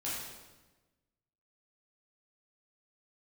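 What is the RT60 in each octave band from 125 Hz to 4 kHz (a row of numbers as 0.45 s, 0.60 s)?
1.5 s, 1.4 s, 1.3 s, 1.1 s, 1.0 s, 1.0 s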